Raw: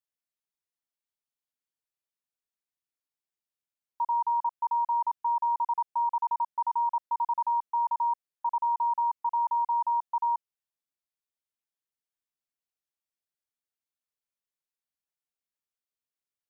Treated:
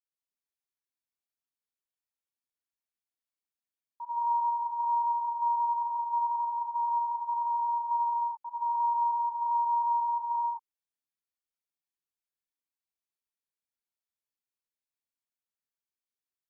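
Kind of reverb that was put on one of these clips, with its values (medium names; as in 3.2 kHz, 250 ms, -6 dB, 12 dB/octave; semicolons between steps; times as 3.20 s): gated-style reverb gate 240 ms rising, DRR -7.5 dB; trim -13 dB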